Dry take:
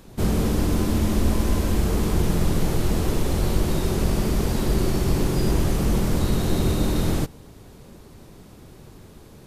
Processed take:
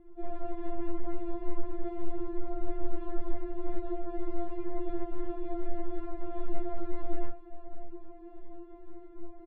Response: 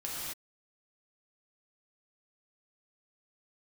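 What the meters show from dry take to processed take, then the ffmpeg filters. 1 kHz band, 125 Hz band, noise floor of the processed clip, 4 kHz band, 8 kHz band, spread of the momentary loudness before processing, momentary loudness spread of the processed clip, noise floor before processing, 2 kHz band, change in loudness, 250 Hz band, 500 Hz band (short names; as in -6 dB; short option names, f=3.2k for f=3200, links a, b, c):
-10.0 dB, -24.0 dB, -48 dBFS, under -30 dB, under -40 dB, 2 LU, 12 LU, -47 dBFS, -21.5 dB, -16.0 dB, -13.5 dB, -10.5 dB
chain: -filter_complex "[0:a]areverse,acompressor=threshold=-31dB:ratio=6,areverse,lowpass=f=3.3k:w=0.5412,lowpass=f=3.3k:w=1.3066,asplit=2[a][b];[b]adelay=16,volume=-7dB[c];[a][c]amix=inputs=2:normalize=0,asplit=2[d][e];[e]adelay=601,lowpass=f=1.2k:p=1,volume=-14dB,asplit=2[f][g];[g]adelay=601,lowpass=f=1.2k:p=1,volume=0.43,asplit=2[h][i];[i]adelay=601,lowpass=f=1.2k:p=1,volume=0.43,asplit=2[j][k];[k]adelay=601,lowpass=f=1.2k:p=1,volume=0.43[l];[d][f][h][j][l]amix=inputs=5:normalize=0,asplit=2[m][n];[n]acrusher=bits=2:mode=log:mix=0:aa=0.000001,volume=-8dB[o];[m][o]amix=inputs=2:normalize=0[p];[1:a]atrim=start_sample=2205,atrim=end_sample=3087[q];[p][q]afir=irnorm=-1:irlink=0,adynamicsmooth=sensitivity=1:basefreq=660,afftfilt=real='re*4*eq(mod(b,16),0)':imag='im*4*eq(mod(b,16),0)':win_size=2048:overlap=0.75,volume=4dB"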